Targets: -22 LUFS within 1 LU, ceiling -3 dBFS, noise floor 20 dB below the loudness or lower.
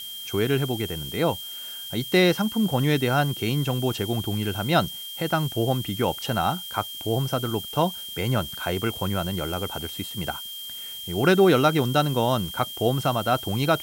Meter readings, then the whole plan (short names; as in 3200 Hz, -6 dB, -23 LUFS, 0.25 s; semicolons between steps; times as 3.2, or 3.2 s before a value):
steady tone 3200 Hz; tone level -35 dBFS; noise floor -37 dBFS; noise floor target -45 dBFS; loudness -24.5 LUFS; peak -7.0 dBFS; loudness target -22.0 LUFS
-> notch 3200 Hz, Q 30; denoiser 8 dB, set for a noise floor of -37 dBFS; gain +2.5 dB